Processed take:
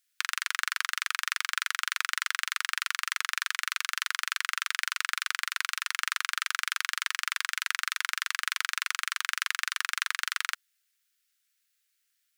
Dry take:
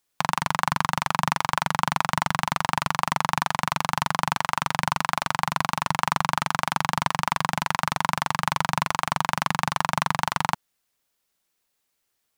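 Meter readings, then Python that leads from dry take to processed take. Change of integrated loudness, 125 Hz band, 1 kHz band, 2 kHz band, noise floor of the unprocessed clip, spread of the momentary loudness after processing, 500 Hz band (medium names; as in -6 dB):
-4.5 dB, under -40 dB, -14.0 dB, -0.5 dB, -76 dBFS, 1 LU, under -40 dB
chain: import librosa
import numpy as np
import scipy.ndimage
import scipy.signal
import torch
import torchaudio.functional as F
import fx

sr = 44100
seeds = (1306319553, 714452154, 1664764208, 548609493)

y = scipy.signal.sosfilt(scipy.signal.butter(8, 1400.0, 'highpass', fs=sr, output='sos'), x)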